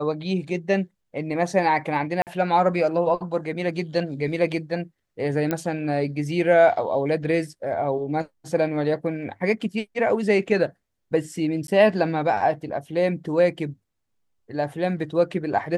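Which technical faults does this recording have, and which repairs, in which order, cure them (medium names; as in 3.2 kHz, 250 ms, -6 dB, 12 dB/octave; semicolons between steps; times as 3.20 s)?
2.22–2.27 s: dropout 48 ms
5.51 s: pop -11 dBFS
11.67–11.68 s: dropout 12 ms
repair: de-click; interpolate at 2.22 s, 48 ms; interpolate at 11.67 s, 12 ms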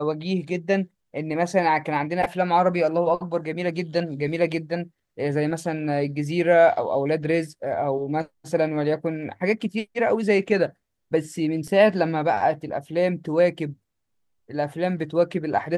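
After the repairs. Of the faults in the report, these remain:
nothing left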